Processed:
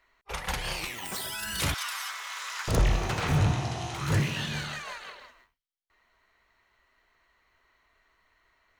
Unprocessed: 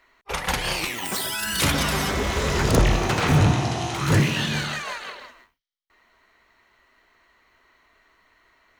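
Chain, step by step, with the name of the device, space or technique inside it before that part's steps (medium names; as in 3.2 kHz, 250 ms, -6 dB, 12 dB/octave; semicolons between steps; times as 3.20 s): low shelf boost with a cut just above (bass shelf 95 Hz +5.5 dB; peaking EQ 270 Hz -4.5 dB 1.1 oct); 1.74–2.68 s: Chebyshev high-pass 1.1 kHz, order 3; trim -7.5 dB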